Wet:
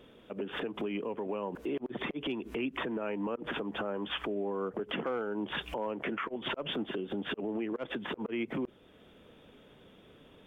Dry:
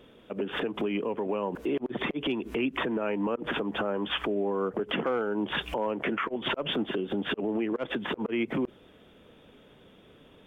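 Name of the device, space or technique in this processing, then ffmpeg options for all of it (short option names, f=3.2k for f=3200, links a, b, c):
parallel compression: -filter_complex "[0:a]asplit=2[a][b];[b]acompressor=threshold=-48dB:ratio=6,volume=-4dB[c];[a][c]amix=inputs=2:normalize=0,volume=-6dB"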